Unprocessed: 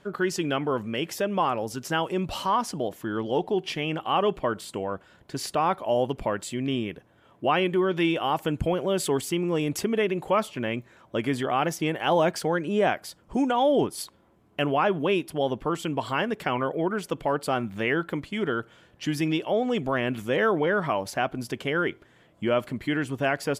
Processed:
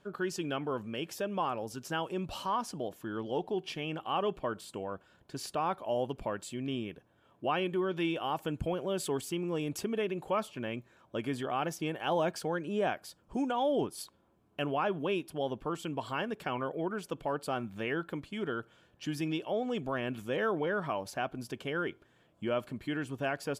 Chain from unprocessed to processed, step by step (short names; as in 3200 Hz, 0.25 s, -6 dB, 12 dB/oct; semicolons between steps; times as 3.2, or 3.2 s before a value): notch 2000 Hz, Q 8.1; gain -8 dB